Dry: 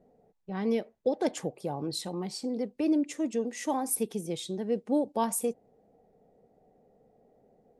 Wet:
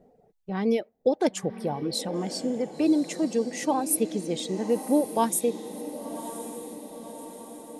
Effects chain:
reverb reduction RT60 0.9 s
feedback delay with all-pass diffusion 1,069 ms, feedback 57%, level −12 dB
level +5 dB

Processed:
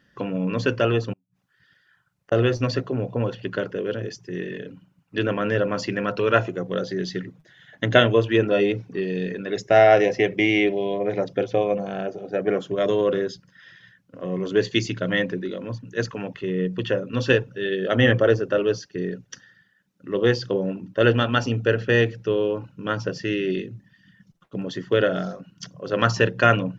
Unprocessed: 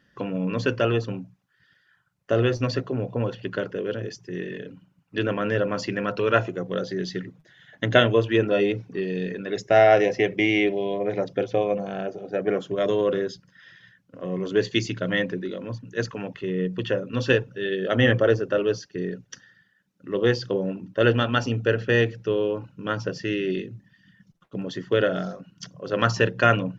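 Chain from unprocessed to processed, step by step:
0:01.13–0:02.32: gate with flip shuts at −31 dBFS, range −39 dB
level +1.5 dB

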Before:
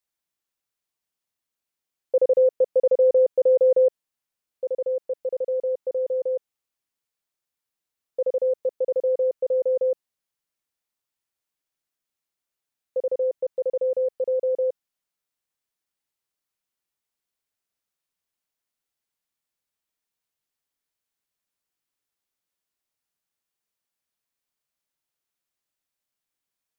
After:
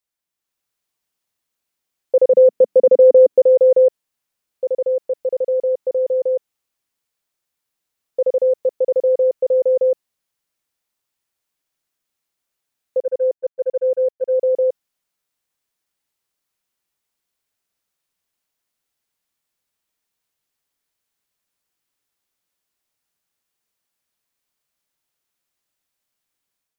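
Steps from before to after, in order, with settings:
0:02.32–0:03.40: parametric band 200 Hz → 290 Hz +11 dB 1.1 octaves
0:13.01–0:14.34: noise gate −24 dBFS, range −21 dB
automatic gain control gain up to 6.5 dB

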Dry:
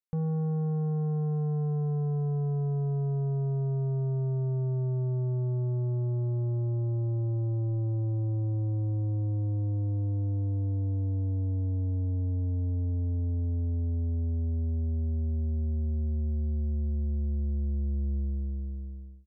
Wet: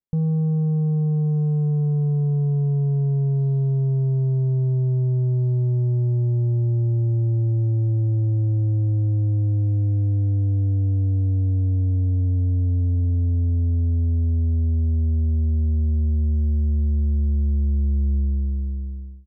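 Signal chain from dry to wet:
tilt shelving filter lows +9.5 dB, about 660 Hz

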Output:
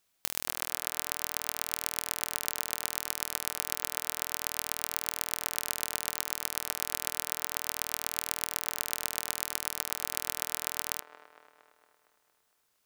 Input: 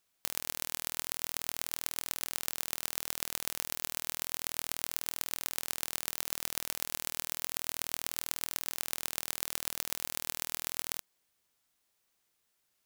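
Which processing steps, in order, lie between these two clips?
delay with a band-pass on its return 230 ms, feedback 59%, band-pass 790 Hz, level −8 dB
level +2.5 dB

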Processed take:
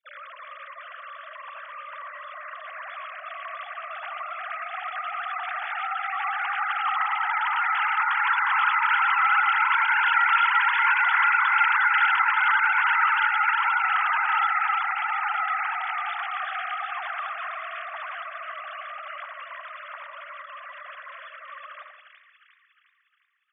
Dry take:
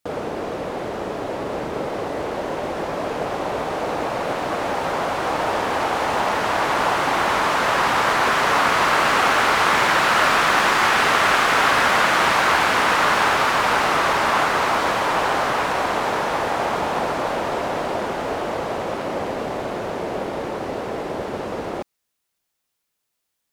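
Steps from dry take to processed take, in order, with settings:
three sine waves on the formant tracks
inverse Chebyshev high-pass filter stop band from 430 Hz, stop band 50 dB
echo with a time of its own for lows and highs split 1,700 Hz, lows 83 ms, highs 357 ms, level −4 dB
level −2.5 dB

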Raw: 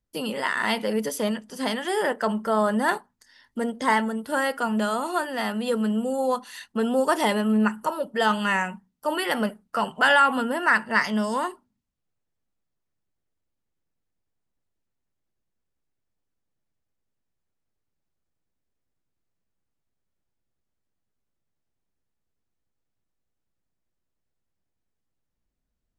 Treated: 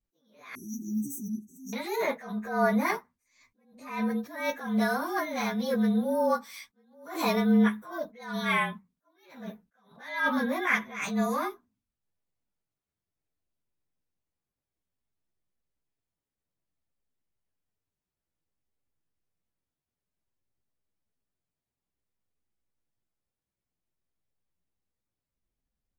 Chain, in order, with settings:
partials spread apart or drawn together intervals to 109%
0:00.55–0:01.73: linear-phase brick-wall band-stop 400–5,600 Hz
level that may rise only so fast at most 100 dB per second

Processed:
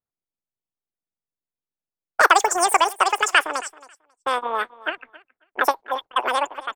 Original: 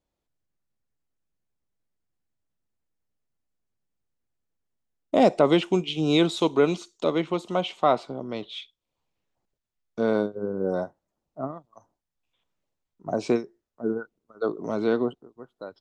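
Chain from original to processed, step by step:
in parallel at +1.5 dB: downward compressor, threshold −29 dBFS, peak gain reduction 15.5 dB
on the sum: low-pass that shuts in the quiet parts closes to 700 Hz, open at −18.5 dBFS
harmonic and percussive parts rebalanced percussive +8 dB
noise gate with hold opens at −47 dBFS
on a send: repeating echo 635 ms, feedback 16%, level −20 dB
on the sum: wrong playback speed 33 rpm record played at 78 rpm
level −3 dB

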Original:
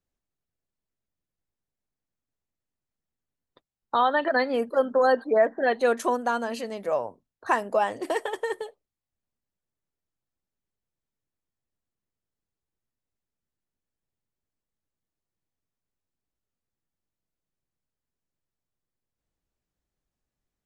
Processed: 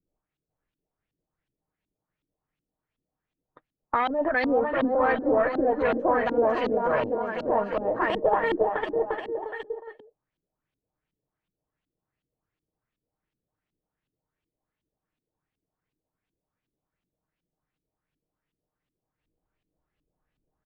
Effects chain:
comb filter 6.5 ms, depth 31%
in parallel at +1.5 dB: compressor whose output falls as the input rises −27 dBFS, ratio −0.5
on the sum: bouncing-ball delay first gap 500 ms, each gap 0.7×, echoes 5
tube saturation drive 12 dB, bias 0.55
auto-filter low-pass saw up 2.7 Hz 260–3,400 Hz
level −4.5 dB

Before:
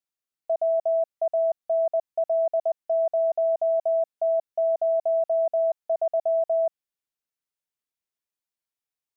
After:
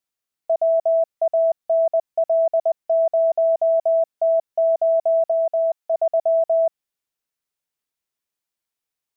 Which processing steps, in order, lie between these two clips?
0:05.31–0:05.94: low-shelf EQ 360 Hz −8.5 dB
level +5 dB

